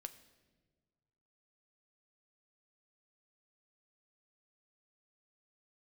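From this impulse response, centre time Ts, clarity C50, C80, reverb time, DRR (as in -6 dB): 8 ms, 14.5 dB, 16.0 dB, 1.5 s, 9.0 dB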